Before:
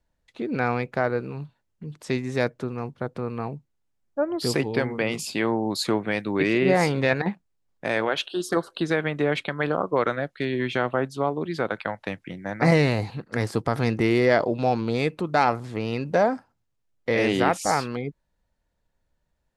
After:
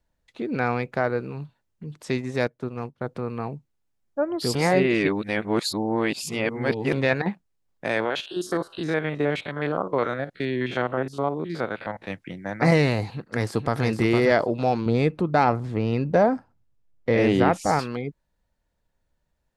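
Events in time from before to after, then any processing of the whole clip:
2.18–3.04 transient shaper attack -1 dB, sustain -12 dB
4.55–6.93 reverse
8–12.11 stepped spectrum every 50 ms
13.09–13.85 echo throw 0.46 s, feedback 15%, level -6 dB
14.86–17.79 tilt -2 dB/oct

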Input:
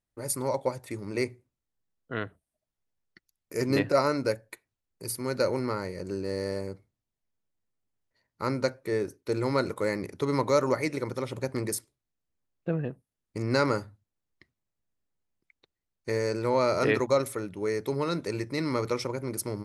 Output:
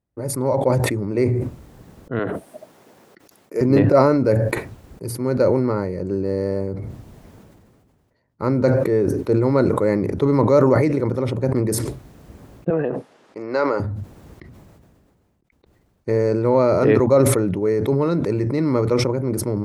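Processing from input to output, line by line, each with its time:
2.19–3.61 HPF 300 Hz
12.7–13.8 BPF 510–5400 Hz
whole clip: HPF 45 Hz; tilt shelf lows +9 dB, about 1400 Hz; sustainer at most 28 dB/s; gain +2 dB

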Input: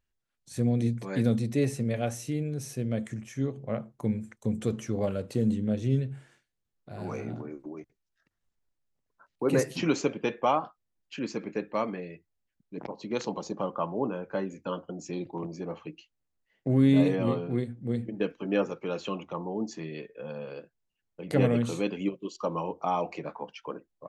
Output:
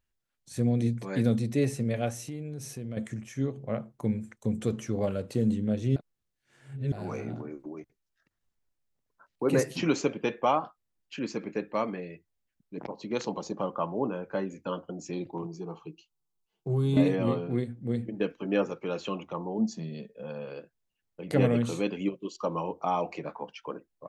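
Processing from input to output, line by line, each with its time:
2.1–2.97 compressor 3:1, threshold -35 dBFS
5.96–6.92 reverse
15.42–16.97 fixed phaser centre 380 Hz, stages 8
19.58–20.23 EQ curve 130 Hz 0 dB, 210 Hz +10 dB, 310 Hz -9 dB, 640 Hz +1 dB, 1100 Hz -9 dB, 2200 Hz -11 dB, 3900 Hz +1 dB

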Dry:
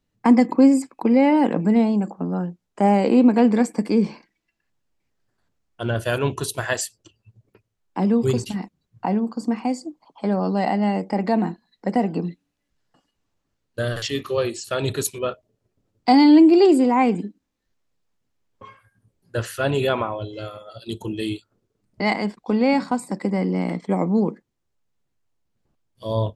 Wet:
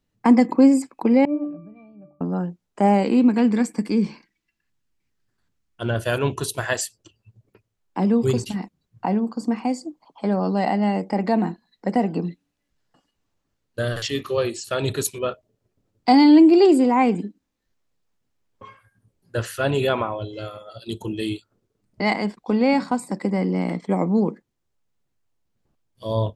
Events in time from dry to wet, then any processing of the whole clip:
1.25–2.21 octave resonator D, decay 0.42 s
3.03–5.82 bell 630 Hz -8 dB 1.3 oct

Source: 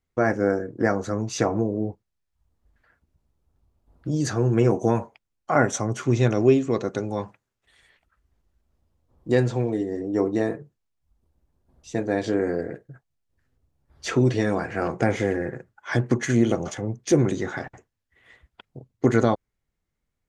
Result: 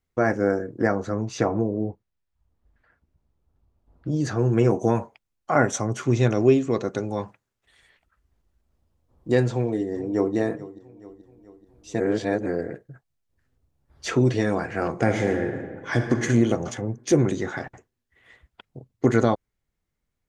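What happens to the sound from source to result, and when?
0.87–4.39 LPF 3300 Hz 6 dB/oct
9.51–10.35 echo throw 0.43 s, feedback 55%, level -17 dB
12–12.46 reverse
14.9–16.17 reverb throw, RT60 1.7 s, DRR 5 dB

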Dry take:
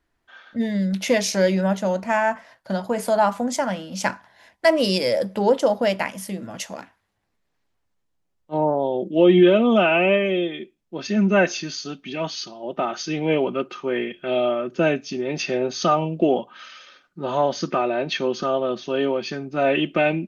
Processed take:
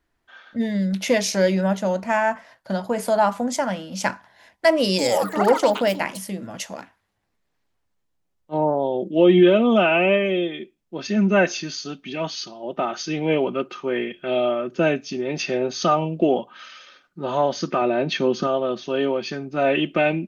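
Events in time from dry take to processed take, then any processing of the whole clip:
4.85–6.65 echoes that change speed 0.135 s, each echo +7 st, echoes 3, each echo -6 dB
17.81–18.47 bell 180 Hz +6 dB 2.2 oct

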